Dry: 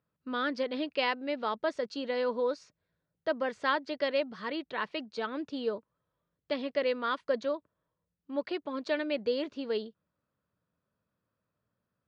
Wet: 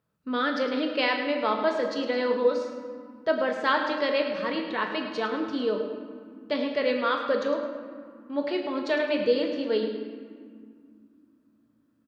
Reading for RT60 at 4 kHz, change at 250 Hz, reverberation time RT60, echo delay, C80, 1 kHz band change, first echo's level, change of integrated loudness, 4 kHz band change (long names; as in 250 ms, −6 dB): 1.1 s, +7.0 dB, 2.2 s, 106 ms, 5.5 dB, +6.0 dB, −11.0 dB, +6.0 dB, +5.5 dB